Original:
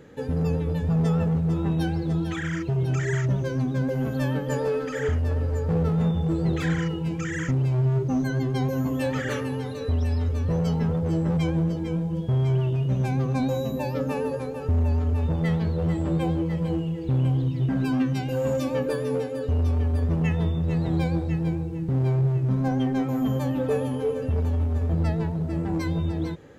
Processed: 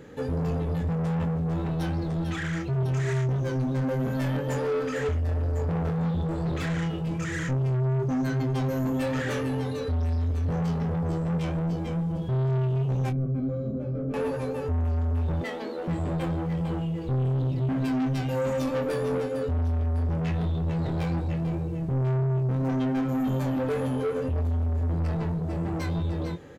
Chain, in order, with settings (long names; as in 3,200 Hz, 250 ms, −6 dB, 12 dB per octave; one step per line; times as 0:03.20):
0:15.41–0:15.88: elliptic high-pass filter 240 Hz, stop band 40 dB
soft clipping −28 dBFS, distortion −10 dB
0:13.10–0:14.14: moving average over 48 samples
double-tracking delay 23 ms −8 dB
level +2 dB